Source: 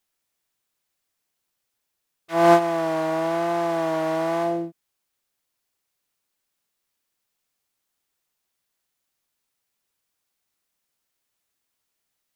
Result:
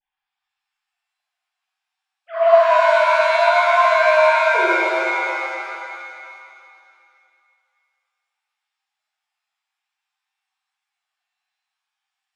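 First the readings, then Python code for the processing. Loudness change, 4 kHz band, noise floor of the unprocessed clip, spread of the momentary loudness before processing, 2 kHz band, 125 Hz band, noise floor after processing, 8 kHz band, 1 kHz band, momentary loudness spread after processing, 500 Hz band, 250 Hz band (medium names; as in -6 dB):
+7.0 dB, +10.5 dB, -79 dBFS, 10 LU, +16.0 dB, under -40 dB, -83 dBFS, no reading, +9.0 dB, 17 LU, +7.0 dB, -9.0 dB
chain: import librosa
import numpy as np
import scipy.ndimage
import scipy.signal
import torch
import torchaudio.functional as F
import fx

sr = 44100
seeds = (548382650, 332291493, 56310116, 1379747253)

y = fx.sine_speech(x, sr)
y = fx.vibrato(y, sr, rate_hz=0.62, depth_cents=60.0)
y = fx.rev_shimmer(y, sr, seeds[0], rt60_s=2.4, semitones=7, shimmer_db=-2, drr_db=-7.5)
y = F.gain(torch.from_numpy(y), -1.5).numpy()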